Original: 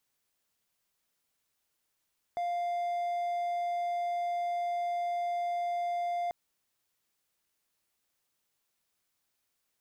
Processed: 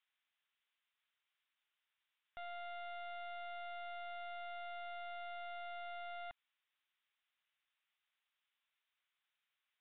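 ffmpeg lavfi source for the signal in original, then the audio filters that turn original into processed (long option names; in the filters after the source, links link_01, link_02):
-f lavfi -i "aevalsrc='0.0422*(1-4*abs(mod(699*t+0.25,1)-0.5))':duration=3.94:sample_rate=44100"
-af "highpass=1400,aresample=8000,aeval=exprs='clip(val(0),-1,0.0015)':channel_layout=same,aresample=44100"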